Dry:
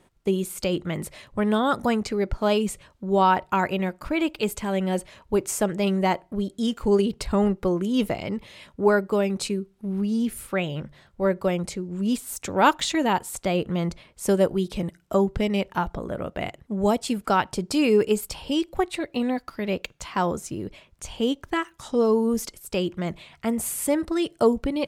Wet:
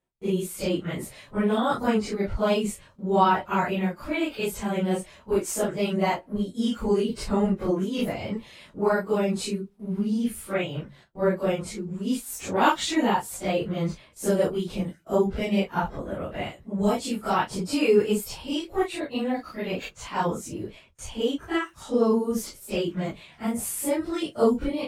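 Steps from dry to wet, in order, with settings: phase scrambler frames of 0.1 s; gate with hold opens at -42 dBFS; gain -1.5 dB

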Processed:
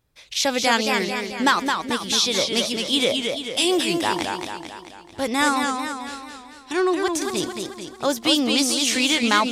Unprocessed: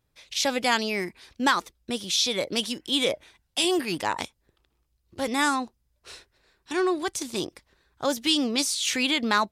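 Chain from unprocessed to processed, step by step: warbling echo 0.22 s, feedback 54%, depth 130 cents, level -5 dB; gain +3.5 dB

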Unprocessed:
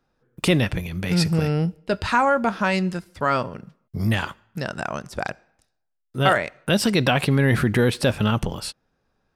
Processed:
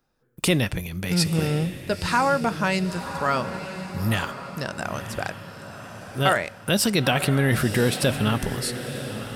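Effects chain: high shelf 6700 Hz +11.5 dB; diffused feedback echo 0.989 s, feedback 45%, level -10 dB; gain -2.5 dB

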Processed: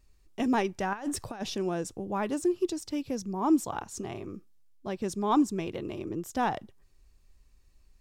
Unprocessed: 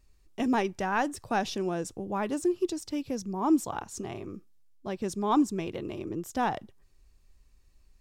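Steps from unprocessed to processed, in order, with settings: 0.93–1.42 negative-ratio compressor -33 dBFS, ratio -0.5

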